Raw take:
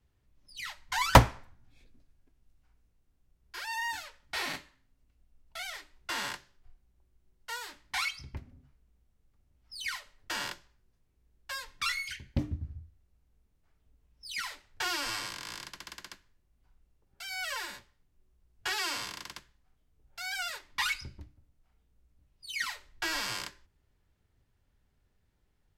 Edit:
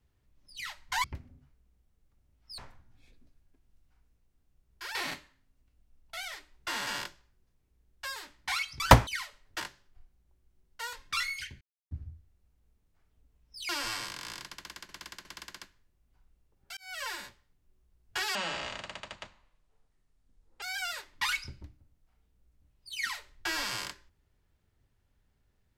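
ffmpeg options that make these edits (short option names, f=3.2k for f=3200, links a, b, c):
-filter_complex "[0:a]asplit=18[a][b][c][d][e][f][g][h][i][j][k][l][m][n][o][p][q][r];[a]atrim=end=1.042[s];[b]atrim=start=8.258:end=9.802[t];[c]atrim=start=1.308:end=3.682[u];[d]atrim=start=4.368:end=6.292[v];[e]atrim=start=10.328:end=11.622[w];[f]atrim=start=7.618:end=8.262[x];[g]atrim=start=1.038:end=1.312[y];[h]atrim=start=9.798:end=10.332[z];[i]atrim=start=6.288:end=7.622[aa];[j]atrim=start=11.618:end=12.3,asetpts=PTS-STARTPTS,afade=t=out:st=0.678:d=0.004:c=hsin[ab];[k]atrim=start=12.3:end=12.6,asetpts=PTS-STARTPTS,volume=0[ac];[l]atrim=start=12.6:end=14.382,asetpts=PTS-STARTPTS,afade=t=in:d=0.004:c=hsin[ad];[m]atrim=start=14.908:end=16.112[ae];[n]atrim=start=15.748:end=16.112[af];[o]atrim=start=15.748:end=17.27,asetpts=PTS-STARTPTS,afade=t=out:st=1.518:d=0.004:c=hsin[ag];[p]atrim=start=17.27:end=18.854,asetpts=PTS-STARTPTS,afade=t=in:d=0.3[ah];[q]atrim=start=18.85:end=20.19,asetpts=PTS-STARTPTS,asetrate=26019,aresample=44100,atrim=end_sample=100159,asetpts=PTS-STARTPTS[ai];[r]atrim=start=20.186[aj];[s][t]acrossfade=d=0.004:c1=hsin:c2=hsin[ak];[ak][u]acrossfade=d=0.004:c1=hsin:c2=hsin[al];[al][v]acrossfade=d=0.004:c1=hsin:c2=hsin[am];[am][w]acrossfade=d=0.004:c1=hsin:c2=hsin[an];[an][x]acrossfade=d=0.004:c1=hsin:c2=hsin[ao];[ao][y]acrossfade=d=0.004:c1=hsin:c2=hsin[ap];[ap][z]acrossfade=d=0.004:c1=hsin:c2=hsin[aq];[aq][aa]acrossfade=d=0.004:c1=hsin:c2=hsin[ar];[ab][ac][ad]concat=n=3:v=0:a=1[as];[ar][as]acrossfade=d=0.004:c1=hsin:c2=hsin[at];[at][ae]acrossfade=d=0.004:c1=hsin:c2=hsin[au];[au][af]acrossfade=d=0.004:c1=hsin:c2=hsin[av];[ag][ah]concat=n=2:v=0:a=1[aw];[av][aw]acrossfade=d=0.004:c1=hsin:c2=hsin[ax];[ax][ai]acrossfade=d=0.004:c1=hsin:c2=hsin[ay];[ay][aj]acrossfade=d=0.004:c1=hsin:c2=hsin"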